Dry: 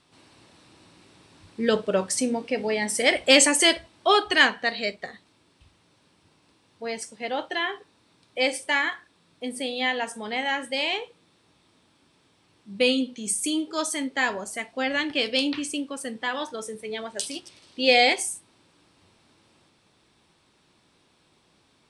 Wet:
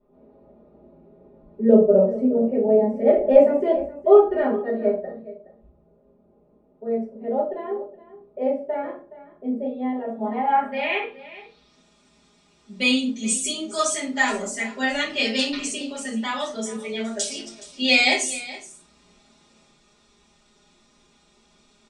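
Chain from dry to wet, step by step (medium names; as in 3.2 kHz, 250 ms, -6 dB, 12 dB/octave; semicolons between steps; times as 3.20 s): comb 4.9 ms, depth 87%; low-pass sweep 540 Hz -> 7 kHz, 9.99–11.86 s; on a send: delay 420 ms -17 dB; on the sum: simulated room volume 140 m³, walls furnished, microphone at 4.6 m; trim -10 dB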